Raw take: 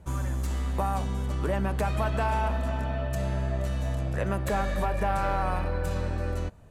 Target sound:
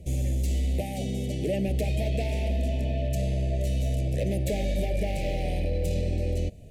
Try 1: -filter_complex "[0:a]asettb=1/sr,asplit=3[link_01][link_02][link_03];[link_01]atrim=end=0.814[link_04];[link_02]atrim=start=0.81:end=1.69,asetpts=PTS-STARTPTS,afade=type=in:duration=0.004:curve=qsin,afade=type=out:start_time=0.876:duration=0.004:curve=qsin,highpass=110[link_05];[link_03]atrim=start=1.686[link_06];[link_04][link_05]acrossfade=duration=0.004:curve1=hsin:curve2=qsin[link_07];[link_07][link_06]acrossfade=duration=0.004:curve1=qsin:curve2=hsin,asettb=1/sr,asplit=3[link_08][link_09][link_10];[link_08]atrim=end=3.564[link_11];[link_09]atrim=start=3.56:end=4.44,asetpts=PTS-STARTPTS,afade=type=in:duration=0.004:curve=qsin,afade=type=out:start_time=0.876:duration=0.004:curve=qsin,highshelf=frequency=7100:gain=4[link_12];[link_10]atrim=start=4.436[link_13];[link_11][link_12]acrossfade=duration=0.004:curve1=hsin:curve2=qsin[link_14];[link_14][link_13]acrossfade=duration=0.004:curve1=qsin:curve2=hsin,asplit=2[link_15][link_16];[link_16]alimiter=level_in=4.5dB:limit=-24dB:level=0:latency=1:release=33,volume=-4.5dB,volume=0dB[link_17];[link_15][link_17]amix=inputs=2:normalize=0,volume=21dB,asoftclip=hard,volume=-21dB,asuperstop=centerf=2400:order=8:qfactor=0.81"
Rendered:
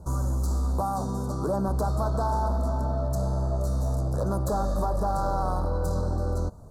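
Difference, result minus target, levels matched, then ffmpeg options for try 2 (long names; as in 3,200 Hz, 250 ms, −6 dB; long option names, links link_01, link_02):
1,000 Hz band +12.0 dB
-filter_complex "[0:a]asettb=1/sr,asplit=3[link_01][link_02][link_03];[link_01]atrim=end=0.814[link_04];[link_02]atrim=start=0.81:end=1.69,asetpts=PTS-STARTPTS,afade=type=in:duration=0.004:curve=qsin,afade=type=out:start_time=0.876:duration=0.004:curve=qsin,highpass=110[link_05];[link_03]atrim=start=1.686[link_06];[link_04][link_05]acrossfade=duration=0.004:curve1=hsin:curve2=qsin[link_07];[link_07][link_06]acrossfade=duration=0.004:curve1=qsin:curve2=hsin,asettb=1/sr,asplit=3[link_08][link_09][link_10];[link_08]atrim=end=3.564[link_11];[link_09]atrim=start=3.56:end=4.44,asetpts=PTS-STARTPTS,afade=type=in:duration=0.004:curve=qsin,afade=type=out:start_time=0.876:duration=0.004:curve=qsin,highshelf=frequency=7100:gain=4[link_12];[link_10]atrim=start=4.436[link_13];[link_11][link_12]acrossfade=duration=0.004:curve1=hsin:curve2=qsin[link_14];[link_14][link_13]acrossfade=duration=0.004:curve1=qsin:curve2=hsin,asplit=2[link_15][link_16];[link_16]alimiter=level_in=4.5dB:limit=-24dB:level=0:latency=1:release=33,volume=-4.5dB,volume=0dB[link_17];[link_15][link_17]amix=inputs=2:normalize=0,volume=21dB,asoftclip=hard,volume=-21dB,asuperstop=centerf=1200:order=8:qfactor=0.81"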